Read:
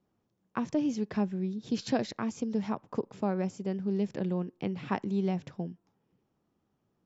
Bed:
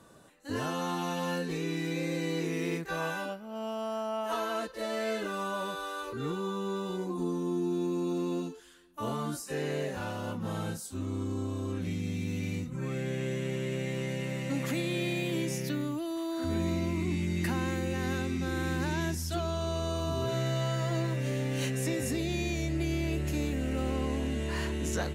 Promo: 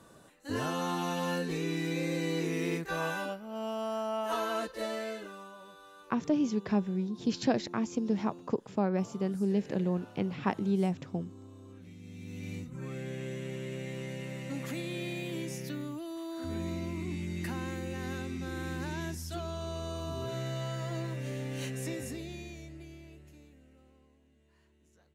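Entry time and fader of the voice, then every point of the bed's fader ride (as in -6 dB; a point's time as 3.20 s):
5.55 s, +1.0 dB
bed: 4.82 s 0 dB
5.57 s -16.5 dB
11.95 s -16.5 dB
12.51 s -5.5 dB
21.92 s -5.5 dB
24.20 s -35 dB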